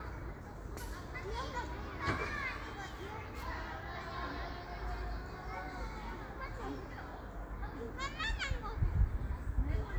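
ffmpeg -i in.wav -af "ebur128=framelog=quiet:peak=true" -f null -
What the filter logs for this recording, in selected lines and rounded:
Integrated loudness:
  I:         -41.1 LUFS
  Threshold: -51.1 LUFS
Loudness range:
  LRA:         4.6 LU
  Threshold: -61.8 LUFS
  LRA low:   -44.1 LUFS
  LRA high:  -39.6 LUFS
True peak:
  Peak:      -19.6 dBFS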